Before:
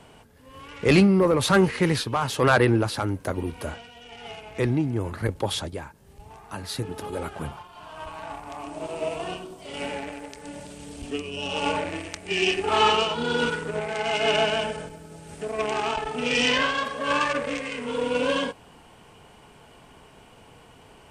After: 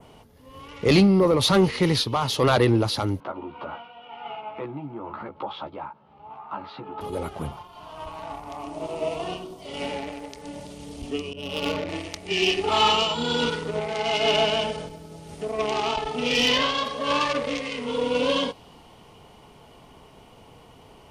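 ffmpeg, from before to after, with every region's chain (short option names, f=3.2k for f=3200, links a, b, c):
-filter_complex "[0:a]asettb=1/sr,asplit=3[a][b][c];[a]atrim=end=3.204[d];[b]atrim=start=3.2:end=7.01,asetpts=PTS-STARTPTS,afade=t=in:d=0.004:c=qsin,afade=t=out:st=3.806:d=0.004:c=qsin,acompressor=threshold=-32dB:ratio=2.5:attack=3.2:release=140:knee=1:detection=peak,highpass=230,equalizer=f=260:t=q:w=4:g=-4,equalizer=f=430:t=q:w=4:g=-7,equalizer=f=890:t=q:w=4:g=7,equalizer=f=1.3k:t=q:w=4:g=9,equalizer=f=1.9k:t=q:w=4:g=-7,lowpass=f=2.8k:w=0.5412,lowpass=f=2.8k:w=1.3066,asplit=2[e][f];[f]adelay=14,volume=-3dB[g];[e][g]amix=inputs=2:normalize=0,atrim=end_sample=168021[h];[c]atrim=start=7.006[i];[d][h]acrossfade=d=0.004:c1=hsin:c2=qsin[j];[j][i]acrossfade=d=0.004:c1=qsin:c2=hsin,asettb=1/sr,asplit=3[k][l][m];[k]atrim=end=11.334[n];[l]atrim=start=11.33:end=11.89,asetpts=PTS-STARTPTS,afade=t=in:d=0.004:c=qsin,afade=t=out:st=0.556:d=0.004:c=qsin,agate=range=-33dB:threshold=-30dB:ratio=3:release=100:detection=peak,equalizer=f=860:t=o:w=0.49:g=-10,adynamicsmooth=sensitivity=3.5:basefreq=1.4k[o];[m]atrim=start=11.886[p];[n][o]acrossfade=d=0.004:c1=hsin:c2=qsin[q];[q][p]acrossfade=d=0.004:c1=qsin:c2=hsin,asettb=1/sr,asplit=3[r][s][t];[r]atrim=end=12.714[u];[s]atrim=start=12.71:end=13.44,asetpts=PTS-STARTPTS,afade=t=in:d=0.004:c=qsin,afade=t=out:st=0.726:d=0.004:c=qsin,equalizer=f=410:t=o:w=0.33:g=-6.5,aeval=exprs='val(0)+0.00501*sin(2*PI*7300*n/s)':c=same[v];[t]atrim=start=13.436[w];[u][v]acrossfade=d=0.004:c1=hsin:c2=qsin[x];[x][w]acrossfade=d=0.004:c1=qsin:c2=hsin,adynamicequalizer=threshold=0.00891:dfrequency=4100:dqfactor=1.1:tfrequency=4100:tqfactor=1.1:attack=5:release=100:ratio=0.375:range=3:mode=boostabove:tftype=bell,acontrast=81,equalizer=f=1.6k:t=o:w=0.33:g=-10,equalizer=f=2.5k:t=o:w=0.33:g=-4,equalizer=f=8k:t=o:w=0.33:g=-9,volume=-5.5dB"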